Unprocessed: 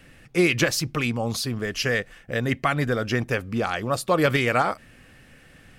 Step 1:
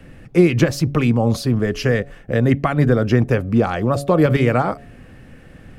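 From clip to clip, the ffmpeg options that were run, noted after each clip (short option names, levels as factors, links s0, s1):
-filter_complex "[0:a]acrossover=split=230[s0][s1];[s1]acompressor=threshold=0.0708:ratio=2.5[s2];[s0][s2]amix=inputs=2:normalize=0,tiltshelf=f=1200:g=7,bandreject=f=141:t=h:w=4,bandreject=f=282:t=h:w=4,bandreject=f=423:t=h:w=4,bandreject=f=564:t=h:w=4,bandreject=f=705:t=h:w=4,volume=1.68"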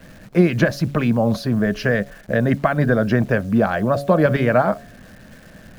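-af "equalizer=f=200:t=o:w=0.33:g=10,equalizer=f=630:t=o:w=0.33:g=12,equalizer=f=1000:t=o:w=0.33:g=4,equalizer=f=1600:t=o:w=0.33:g=11,equalizer=f=4000:t=o:w=0.33:g=4,equalizer=f=8000:t=o:w=0.33:g=-11,acrusher=bits=8:dc=4:mix=0:aa=0.000001,volume=0.596"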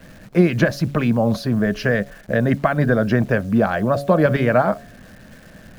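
-af anull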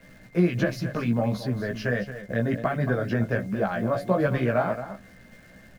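-af "aecho=1:1:224:0.266,aeval=exprs='val(0)+0.00398*sin(2*PI*2100*n/s)':c=same,flanger=delay=15:depth=2.6:speed=1.4,volume=0.562"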